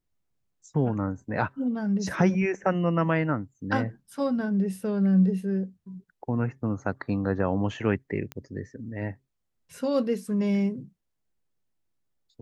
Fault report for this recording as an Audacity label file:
8.320000	8.320000	pop -20 dBFS

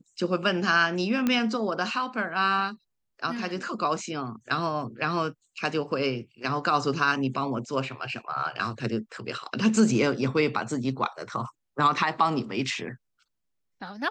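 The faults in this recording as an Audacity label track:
1.270000	1.270000	pop -12 dBFS

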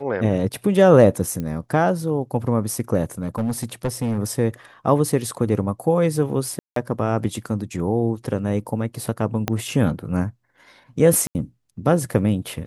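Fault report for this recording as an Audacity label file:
1.400000	1.400000	pop -16 dBFS
3.220000	4.180000	clipped -18.5 dBFS
6.590000	6.760000	dropout 173 ms
9.480000	9.480000	pop -7 dBFS
11.270000	11.350000	dropout 79 ms

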